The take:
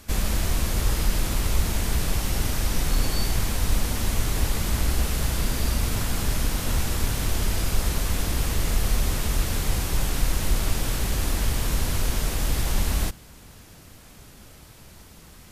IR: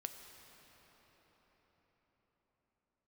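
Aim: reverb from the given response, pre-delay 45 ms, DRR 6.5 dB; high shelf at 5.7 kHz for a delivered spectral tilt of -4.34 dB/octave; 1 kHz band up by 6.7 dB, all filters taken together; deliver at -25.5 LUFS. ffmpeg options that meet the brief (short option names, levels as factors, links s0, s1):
-filter_complex "[0:a]equalizer=f=1000:t=o:g=8.5,highshelf=f=5700:g=-4,asplit=2[s0][s1];[1:a]atrim=start_sample=2205,adelay=45[s2];[s1][s2]afir=irnorm=-1:irlink=0,volume=0.668[s3];[s0][s3]amix=inputs=2:normalize=0"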